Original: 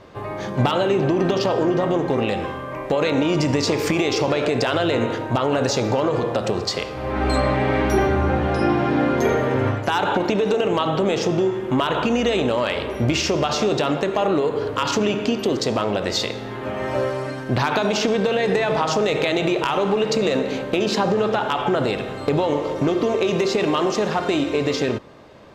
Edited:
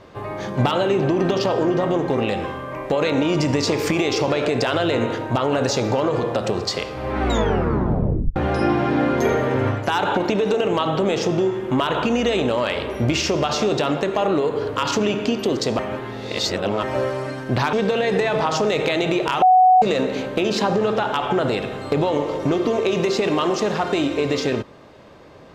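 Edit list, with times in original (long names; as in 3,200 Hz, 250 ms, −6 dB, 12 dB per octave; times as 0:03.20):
0:07.21: tape stop 1.15 s
0:15.79–0:16.83: reverse
0:17.73–0:18.09: remove
0:19.78–0:20.18: beep over 742 Hz −9 dBFS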